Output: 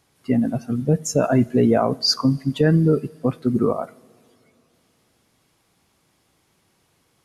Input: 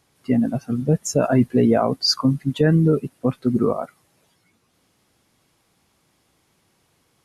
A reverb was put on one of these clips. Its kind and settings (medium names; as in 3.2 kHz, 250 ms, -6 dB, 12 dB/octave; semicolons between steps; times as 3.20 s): two-slope reverb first 0.55 s, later 3 s, from -14 dB, DRR 19.5 dB